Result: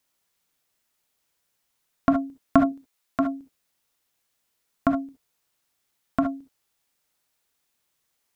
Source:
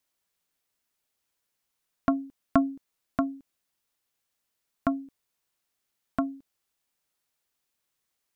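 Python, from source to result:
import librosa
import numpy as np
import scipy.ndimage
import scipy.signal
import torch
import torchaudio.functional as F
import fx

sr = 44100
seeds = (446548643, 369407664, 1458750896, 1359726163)

y = fx.low_shelf(x, sr, hz=490.0, db=-8.5, at=(2.65, 3.2))
y = fx.rev_gated(y, sr, seeds[0], gate_ms=90, shape='rising', drr_db=6.0)
y = y * librosa.db_to_amplitude(4.5)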